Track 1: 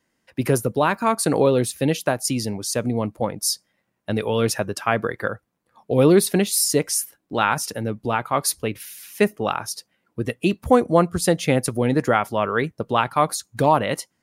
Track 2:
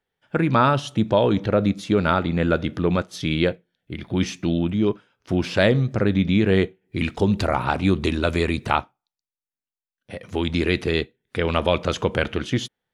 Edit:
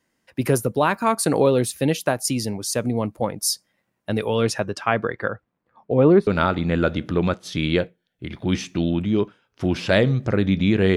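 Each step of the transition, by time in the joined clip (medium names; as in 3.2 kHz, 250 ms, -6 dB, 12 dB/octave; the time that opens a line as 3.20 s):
track 1
4.34–6.27 s: low-pass 8.7 kHz -> 1.4 kHz
6.27 s: go over to track 2 from 1.95 s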